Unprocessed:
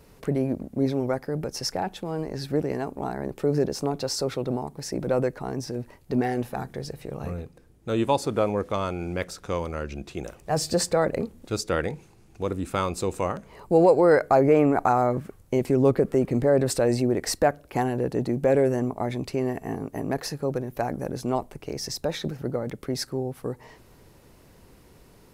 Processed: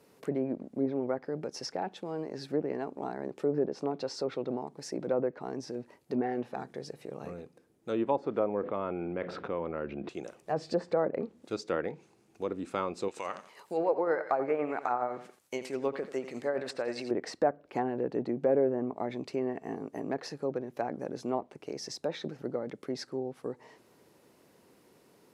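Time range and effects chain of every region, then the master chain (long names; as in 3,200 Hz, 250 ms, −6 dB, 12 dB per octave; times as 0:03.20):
0:08.63–0:10.09: high-frequency loss of the air 480 metres + envelope flattener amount 70%
0:13.08–0:17.11: tilt shelving filter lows −9.5 dB, about 890 Hz + amplitude tremolo 9.7 Hz, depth 47% + feedback echo at a low word length 87 ms, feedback 35%, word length 8 bits, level −12 dB
whole clip: high-pass filter 200 Hz 12 dB per octave; treble cut that deepens with the level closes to 1,300 Hz, closed at −19.5 dBFS; parametric band 380 Hz +2.5 dB 1.8 octaves; level −7 dB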